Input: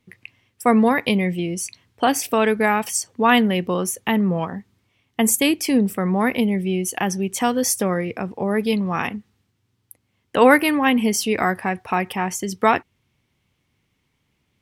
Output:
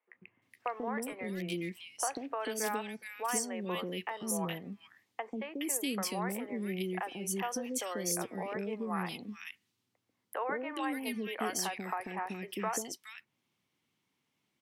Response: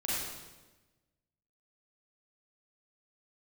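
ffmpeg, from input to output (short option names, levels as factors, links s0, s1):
-filter_complex "[0:a]highpass=220,acrossover=split=330|1200|2400[s0][s1][s2][s3];[s0]alimiter=level_in=1.06:limit=0.0631:level=0:latency=1,volume=0.944[s4];[s4][s1][s2][s3]amix=inputs=4:normalize=0,acompressor=threshold=0.0631:ratio=4,asettb=1/sr,asplit=3[s5][s6][s7];[s5]atrim=end=0.934[s8];[s6]atrim=start=0.93:end=1.38,asetpts=PTS-STARTPTS,afade=t=in:d=0.004:c=qsin,afade=t=out:st=0.446:d=0.004:c=qsin,volume=12.6,asoftclip=hard,volume=0.0794[s9];[s7]atrim=start=1.376[s10];[s8][s9]acrossfade=d=0.004:c1=hsin:c2=qsin[s11];[s11][s10]acrossfade=d=0.004:c1=qsin:c2=hsin,acrossover=split=480|2100[s12][s13][s14];[s12]adelay=140[s15];[s14]adelay=420[s16];[s15][s13][s16]amix=inputs=3:normalize=0,volume=0.447"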